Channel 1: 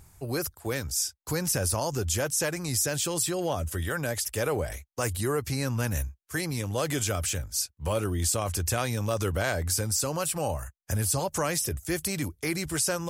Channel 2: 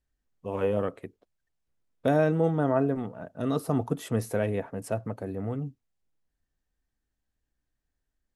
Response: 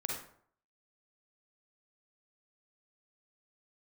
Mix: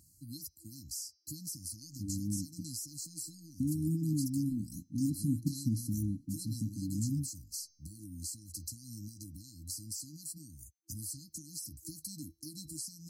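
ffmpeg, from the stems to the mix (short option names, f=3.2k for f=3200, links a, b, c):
-filter_complex "[0:a]highpass=f=230:p=1,acompressor=threshold=-34dB:ratio=6,volume=-4.5dB[a];[1:a]acompressor=threshold=-24dB:ratio=6,adelay=1550,volume=-0.5dB[b];[a][b]amix=inputs=2:normalize=0,bandreject=f=367.6:t=h:w=4,bandreject=f=735.2:t=h:w=4,bandreject=f=1.1028k:t=h:w=4,bandreject=f=1.4704k:t=h:w=4,bandreject=f=1.838k:t=h:w=4,bandreject=f=2.2056k:t=h:w=4,bandreject=f=2.5732k:t=h:w=4,bandreject=f=2.9408k:t=h:w=4,bandreject=f=3.3084k:t=h:w=4,bandreject=f=3.676k:t=h:w=4,bandreject=f=4.0436k:t=h:w=4,bandreject=f=4.4112k:t=h:w=4,bandreject=f=4.7788k:t=h:w=4,bandreject=f=5.1464k:t=h:w=4,bandreject=f=5.514k:t=h:w=4,bandreject=f=5.8816k:t=h:w=4,bandreject=f=6.2492k:t=h:w=4,afftfilt=real='re*(1-between(b*sr/4096,330,4000))':imag='im*(1-between(b*sr/4096,330,4000))':win_size=4096:overlap=0.75"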